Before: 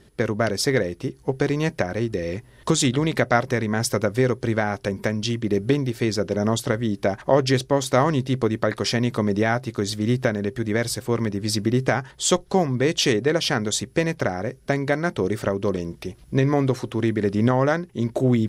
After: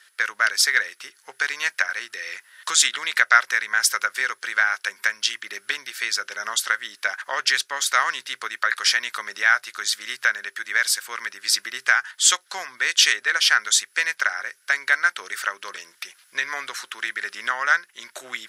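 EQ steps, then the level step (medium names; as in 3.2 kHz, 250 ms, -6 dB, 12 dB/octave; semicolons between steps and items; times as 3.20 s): resonant high-pass 1.5 kHz, resonance Q 3.3; treble shelf 2.2 kHz +10 dB; -2.5 dB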